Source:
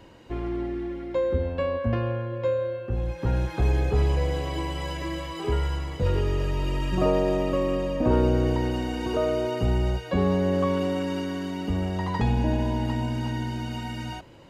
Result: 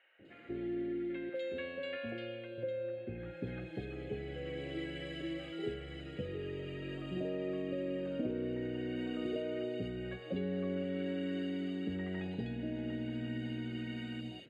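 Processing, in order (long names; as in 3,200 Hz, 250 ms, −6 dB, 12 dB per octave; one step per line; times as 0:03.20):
0:01.10–0:02.39: spectral tilt +4 dB per octave
downward compressor, threshold −26 dBFS, peak gain reduction 9.5 dB
band-pass filter 190–5,100 Hz
phaser with its sweep stopped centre 2,400 Hz, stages 4
three-band delay without the direct sound mids, lows, highs 190/250 ms, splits 840/2,700 Hz
level −3 dB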